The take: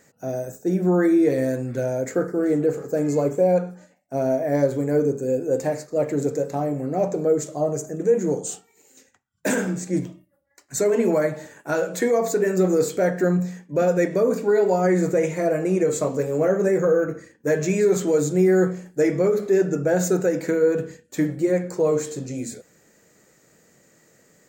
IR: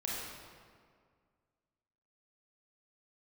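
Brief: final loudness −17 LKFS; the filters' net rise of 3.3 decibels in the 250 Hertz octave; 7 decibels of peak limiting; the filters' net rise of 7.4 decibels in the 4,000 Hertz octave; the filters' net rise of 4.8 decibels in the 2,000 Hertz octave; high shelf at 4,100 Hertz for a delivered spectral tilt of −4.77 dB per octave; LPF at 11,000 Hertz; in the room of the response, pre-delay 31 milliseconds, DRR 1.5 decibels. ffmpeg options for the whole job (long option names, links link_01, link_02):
-filter_complex "[0:a]lowpass=11000,equalizer=frequency=250:width_type=o:gain=5,equalizer=frequency=2000:width_type=o:gain=4,equalizer=frequency=4000:width_type=o:gain=3.5,highshelf=frequency=4100:gain=7.5,alimiter=limit=-13dB:level=0:latency=1,asplit=2[link_01][link_02];[1:a]atrim=start_sample=2205,adelay=31[link_03];[link_02][link_03]afir=irnorm=-1:irlink=0,volume=-5dB[link_04];[link_01][link_04]amix=inputs=2:normalize=0,volume=3dB"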